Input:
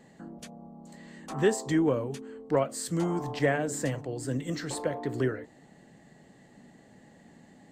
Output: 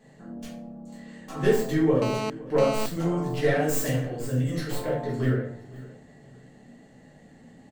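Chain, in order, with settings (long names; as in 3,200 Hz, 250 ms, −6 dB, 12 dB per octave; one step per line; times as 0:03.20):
stylus tracing distortion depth 0.11 ms
0:03.58–0:04.03: high-shelf EQ 4,100 Hz +11 dB
repeating echo 514 ms, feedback 28%, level −20 dB
rectangular room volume 69 cubic metres, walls mixed, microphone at 1.5 metres
0:02.02–0:02.86: phone interference −24 dBFS
level −5.5 dB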